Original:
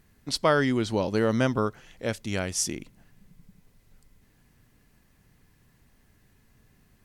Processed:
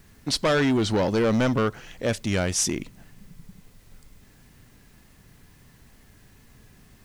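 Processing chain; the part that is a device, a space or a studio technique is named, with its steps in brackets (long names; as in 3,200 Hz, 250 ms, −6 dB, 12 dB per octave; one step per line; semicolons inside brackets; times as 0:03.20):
compact cassette (soft clipping −25.5 dBFS, distortion −8 dB; low-pass filter 9,800 Hz; tape wow and flutter; white noise bed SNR 36 dB)
level +8 dB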